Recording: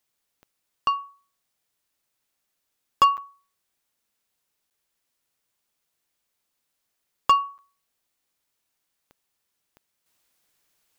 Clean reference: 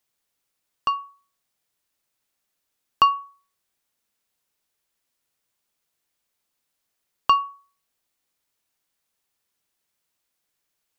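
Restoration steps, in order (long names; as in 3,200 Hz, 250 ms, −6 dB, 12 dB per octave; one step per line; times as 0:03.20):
clipped peaks rebuilt −10 dBFS
click removal
repair the gap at 0:03.17/0:04.70/0:07.58, 8.2 ms
level correction −7 dB, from 0:10.06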